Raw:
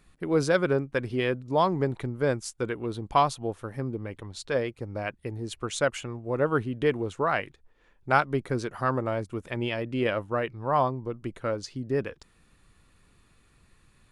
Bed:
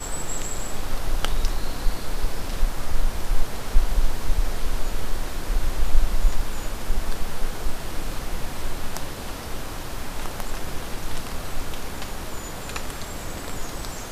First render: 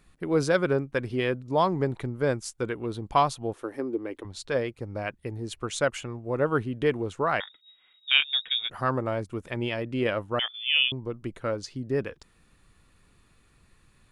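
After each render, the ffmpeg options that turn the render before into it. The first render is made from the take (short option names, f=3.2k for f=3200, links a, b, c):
-filter_complex "[0:a]asettb=1/sr,asplit=3[a][b][c];[a]atrim=end=3.534[d];[b]atrim=start=3.53:end=4.25,asetpts=PTS-STARTPTS,afade=t=in:d=0.004:c=qsin,afade=t=out:st=0.716:d=0.004:c=qsin,lowshelf=f=220:t=q:w=3:g=-12[e];[c]atrim=start=4.246[f];[d][e]acrossfade=d=0.004:c1=hsin:c2=qsin[g];[g][f]acrossfade=d=0.004:c1=qsin:c2=hsin,asettb=1/sr,asplit=3[h][i][j];[h]atrim=end=7.404[k];[i]atrim=start=7.4:end=8.7,asetpts=PTS-STARTPTS,afade=t=in:d=0.004:c=qsin,afade=t=out:st=1.296:d=0.004:c=qsin,lowpass=f=3.2k:t=q:w=0.5098,lowpass=f=3.2k:t=q:w=0.6013,lowpass=f=3.2k:t=q:w=0.9,lowpass=f=3.2k:t=q:w=2.563,afreqshift=-3800[l];[j]atrim=start=8.696[m];[k][l]acrossfade=d=0.004:c1=hsin:c2=qsin[n];[n][m]acrossfade=d=0.004:c1=qsin:c2=hsin,asettb=1/sr,asplit=3[o][p][q];[o]atrim=end=10.394[r];[p]atrim=start=10.39:end=10.92,asetpts=PTS-STARTPTS,afade=t=in:d=0.004:c=qsin,afade=t=out:st=0.526:d=0.004:c=qsin,lowpass=f=3.1k:t=q:w=0.5098,lowpass=f=3.1k:t=q:w=0.6013,lowpass=f=3.1k:t=q:w=0.9,lowpass=f=3.1k:t=q:w=2.563,afreqshift=-3600[s];[q]atrim=start=10.916[t];[r][s]acrossfade=d=0.004:c1=hsin:c2=qsin[u];[u][t]acrossfade=d=0.004:c1=qsin:c2=hsin"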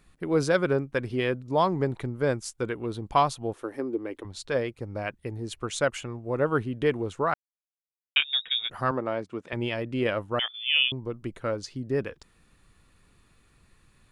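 -filter_complex "[0:a]asettb=1/sr,asplit=3[a][b][c];[a]atrim=end=8.914[d];[b]atrim=start=8.91:end=9.53,asetpts=PTS-STARTPTS,afade=t=in:d=0.004:c=qsin,afade=t=out:st=0.616:d=0.004:c=qsin,highpass=190,lowpass=5.2k[e];[c]atrim=start=9.526[f];[d][e]acrossfade=d=0.004:c1=hsin:c2=qsin[g];[g][f]acrossfade=d=0.004:c1=qsin:c2=hsin,asplit=3[h][i][j];[h]atrim=end=7.34,asetpts=PTS-STARTPTS,afade=t=out:st=7.336:d=0.004:c=hsin[k];[i]atrim=start=7.34:end=8.16,asetpts=PTS-STARTPTS,volume=0[l];[j]atrim=start=8.16,asetpts=PTS-STARTPTS,afade=t=in:d=0.004:c=hsin[m];[k][l][m]concat=n=3:v=0:a=1"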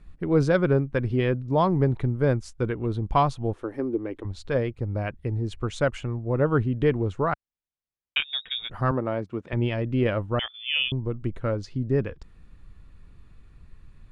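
-af "aemphasis=mode=reproduction:type=bsi"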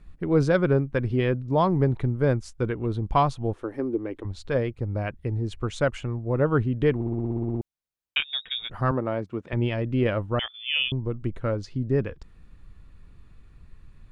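-filter_complex "[0:a]asplit=12[a][b][c][d][e][f][g][h][i][j][k][l];[a]atrim=end=7.012[m];[b]atrim=start=6.948:end=7.012[n];[c]atrim=start=6.948:end=7.012[o];[d]atrim=start=6.948:end=7.012[p];[e]atrim=start=6.948:end=7.012[q];[f]atrim=start=6.948:end=7.012[r];[g]atrim=start=6.948:end=7.012[s];[h]atrim=start=6.948:end=7.012[t];[i]atrim=start=6.948:end=7.012[u];[j]atrim=start=6.948:end=7.012[v];[k]atrim=start=6.948:end=7.012[w];[l]atrim=start=7.608[x];[m][n]acrossfade=d=0.004:c1=hsin:c2=hsin[y];[y][o]acrossfade=d=0.004:c1=hsin:c2=hsin[z];[z][p]acrossfade=d=0.004:c1=hsin:c2=hsin[aa];[aa][q]acrossfade=d=0.004:c1=hsin:c2=hsin[ab];[ab][r]acrossfade=d=0.004:c1=hsin:c2=hsin[ac];[ac][s]acrossfade=d=0.004:c1=hsin:c2=hsin[ad];[ad][t]acrossfade=d=0.004:c1=hsin:c2=hsin[ae];[ae][u]acrossfade=d=0.004:c1=hsin:c2=hsin[af];[af][v]acrossfade=d=0.004:c1=hsin:c2=hsin[ag];[ag][w]acrossfade=d=0.004:c1=hsin:c2=hsin[ah];[ah][x]acrossfade=d=0.004:c1=hsin:c2=hsin"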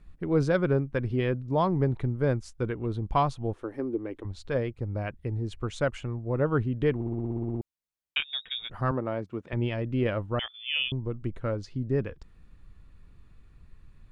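-af "volume=-3.5dB"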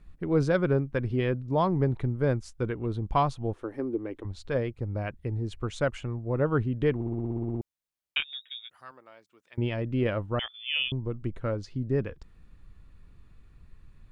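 -filter_complex "[0:a]asettb=1/sr,asplit=3[a][b][c];[a]atrim=end=8.334[d];[b]atrim=start=8.33:end=9.58,asetpts=PTS-STARTPTS,afade=t=in:d=0.004:c=qsin,afade=t=out:st=1.246:d=0.004:c=qsin,aderivative[e];[c]atrim=start=9.576[f];[d][e]acrossfade=d=0.004:c1=hsin:c2=qsin[g];[g][f]acrossfade=d=0.004:c1=qsin:c2=hsin"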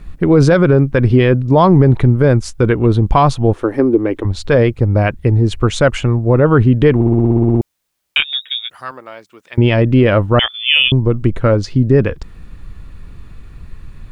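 -af "acontrast=27,alimiter=level_in=14dB:limit=-1dB:release=50:level=0:latency=1"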